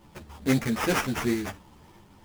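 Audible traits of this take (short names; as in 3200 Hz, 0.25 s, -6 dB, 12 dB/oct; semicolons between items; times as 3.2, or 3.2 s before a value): aliases and images of a low sample rate 4100 Hz, jitter 20%; tremolo saw up 1.5 Hz, depth 30%; a shimmering, thickened sound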